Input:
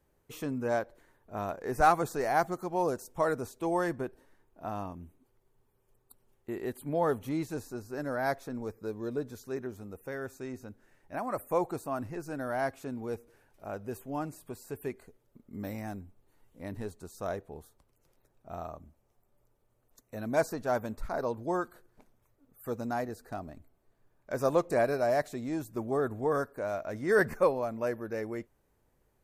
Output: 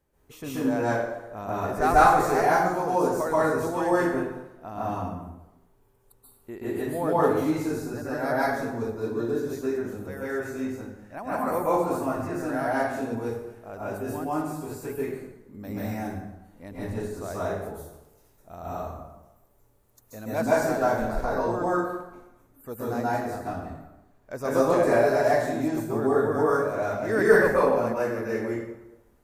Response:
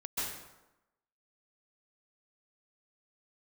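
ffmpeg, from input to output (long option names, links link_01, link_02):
-filter_complex "[0:a]asettb=1/sr,asplit=3[link_01][link_02][link_03];[link_01]atrim=end=17.474[link_04];[link_02]atrim=start=17.47:end=20.24,asetpts=PTS-STARTPTS,afade=type=in:duration=0.004:curve=qsin,afade=type=out:start_time=2.766:duration=0.004:curve=qsin,highshelf=frequency=6600:gain=7.5[link_05];[link_03]atrim=start=20.236[link_06];[link_04][link_05]acrossfade=duration=0.004:curve1=hsin:curve2=qsin[link_07];[link_07][link_06]acrossfade=duration=0.004:curve1=qsin:curve2=hsin[link_08];[1:a]atrim=start_sample=2205[link_09];[link_08][link_09]afir=irnorm=-1:irlink=0,volume=3.5dB"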